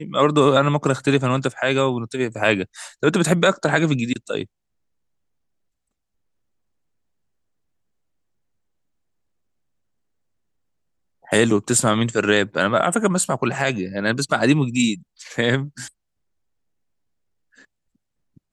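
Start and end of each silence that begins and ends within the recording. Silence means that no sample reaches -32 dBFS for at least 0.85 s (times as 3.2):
4.44–11.31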